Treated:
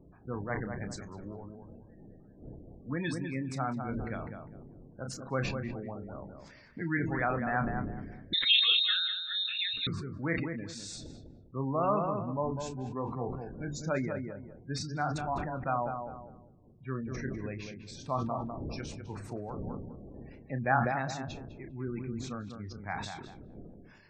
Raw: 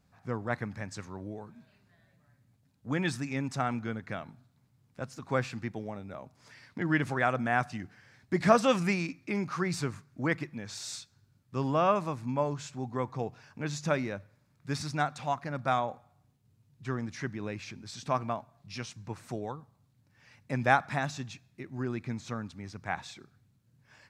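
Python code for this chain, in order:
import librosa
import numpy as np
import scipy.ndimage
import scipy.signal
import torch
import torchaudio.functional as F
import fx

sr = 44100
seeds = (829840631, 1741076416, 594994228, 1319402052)

y = fx.dmg_wind(x, sr, seeds[0], corner_hz=290.0, level_db=-47.0)
y = fx.spec_gate(y, sr, threshold_db=-20, keep='strong')
y = fx.doubler(y, sr, ms=30.0, db=-11)
y = fx.echo_filtered(y, sr, ms=201, feedback_pct=27, hz=1300.0, wet_db=-5.5)
y = fx.freq_invert(y, sr, carrier_hz=3900, at=(8.33, 9.87))
y = fx.sustainer(y, sr, db_per_s=40.0)
y = y * 10.0 ** (-4.0 / 20.0)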